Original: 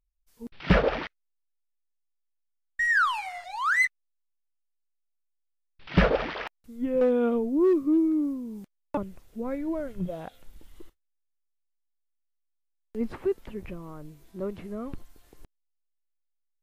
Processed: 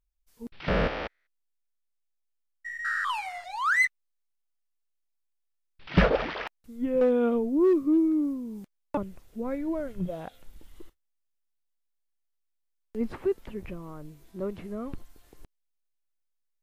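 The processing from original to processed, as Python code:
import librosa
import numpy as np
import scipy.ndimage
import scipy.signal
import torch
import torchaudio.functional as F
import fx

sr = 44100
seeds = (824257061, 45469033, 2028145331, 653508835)

y = fx.spec_steps(x, sr, hold_ms=200, at=(0.68, 3.1))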